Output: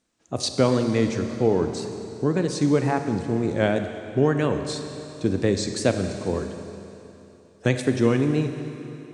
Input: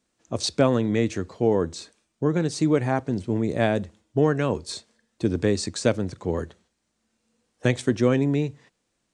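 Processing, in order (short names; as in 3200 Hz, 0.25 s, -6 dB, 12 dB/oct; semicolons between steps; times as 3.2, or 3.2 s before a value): wow and flutter 110 cents; Schroeder reverb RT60 3.1 s, combs from 31 ms, DRR 6.5 dB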